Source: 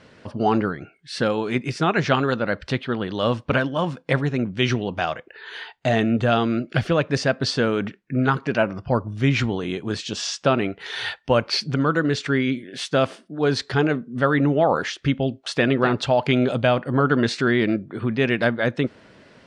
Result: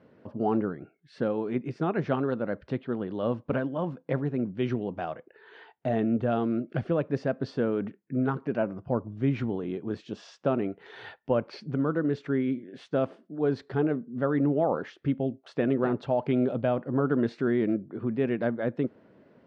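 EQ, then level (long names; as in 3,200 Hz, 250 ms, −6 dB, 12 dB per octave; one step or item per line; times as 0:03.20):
resonant band-pass 310 Hz, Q 0.61
−4.5 dB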